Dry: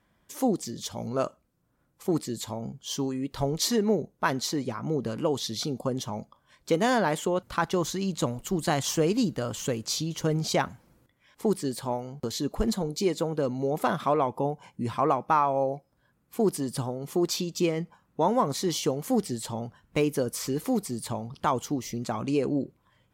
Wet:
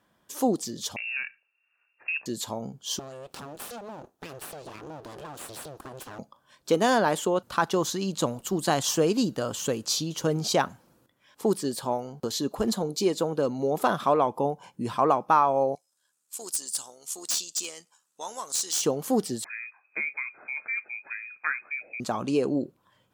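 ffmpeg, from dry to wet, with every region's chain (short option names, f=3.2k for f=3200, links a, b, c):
-filter_complex "[0:a]asettb=1/sr,asplit=3[a][b][c];[a]atrim=end=0.964[d];[b]atrim=start=0.96:end=2.26,asetpts=PTS-STARTPTS,afade=t=in:d=0.004:c=qsin,afade=t=out:st=1.296:d=0.004:c=qsin,highpass=130,acompressor=threshold=-28dB:ratio=3:attack=3.2:release=140:knee=1:detection=peak,lowpass=f=2.5k:t=q:w=0.5098,lowpass=f=2.5k:t=q:w=0.6013,lowpass=f=2.5k:t=q:w=0.9,lowpass=f=2.5k:t=q:w=2.563,afreqshift=-2900[e];[c]atrim=start=2.256[f];[d][e]acrossfade=d=0.004:c1=hsin:c2=qsin[g];[g][f]acrossfade=d=0.004:c1=qsin:c2=hsin,asettb=1/sr,asplit=3[h][i][j];[h]atrim=end=2.994[k];[i]atrim=start=2.99:end=6.19,asetpts=PTS-STARTPTS,afade=t=in:d=0.004:c=qsin,afade=t=out:st=3.196:d=0.004:c=qsin,aeval=exprs='abs(val(0))':c=same,acompressor=threshold=-34dB:ratio=6:attack=3.2:release=140:knee=1:detection=peak[l];[j]atrim=start=6.186[m];[k][l]acrossfade=d=0.004:c1=hsin:c2=qsin[n];[n][m]acrossfade=d=0.004:c1=qsin:c2=hsin,asettb=1/sr,asplit=3[o][p][q];[o]atrim=end=15.754[r];[p]atrim=start=15.75:end=18.82,asetpts=PTS-STARTPTS,afade=t=in:d=0.004:c=qsin,afade=t=out:st=3.066:d=0.004:c=qsin,bandpass=f=7.8k:t=q:w=2.3,aeval=exprs='0.0631*sin(PI/2*3.55*val(0)/0.0631)':c=same,tremolo=f=76:d=0.4[s];[q]atrim=start=18.816[t];[r][s]acrossfade=d=0.004:c1=hsin:c2=qsin[u];[u][t]acrossfade=d=0.004:c1=qsin:c2=hsin,asettb=1/sr,asplit=3[v][w][x];[v]atrim=end=19.444[y];[w]atrim=start=19.44:end=22,asetpts=PTS-STARTPTS,afade=t=in:d=0.004:c=qsin,afade=t=out:st=2.556:d=0.004:c=qsin,flanger=delay=3.6:depth=8.8:regen=-77:speed=1.4:shape=triangular,lowpass=f=2.2k:t=q:w=0.5098,lowpass=f=2.2k:t=q:w=0.6013,lowpass=f=2.2k:t=q:w=0.9,lowpass=f=2.2k:t=q:w=2.563,afreqshift=-2600[z];[x]atrim=start=21.996[aa];[y][z]acrossfade=d=0.004:c1=hsin:c2=qsin[ab];[ab][aa]acrossfade=d=0.004:c1=qsin:c2=hsin,highpass=f=240:p=1,equalizer=f=2.1k:t=o:w=0.32:g=-7.5,volume=3dB"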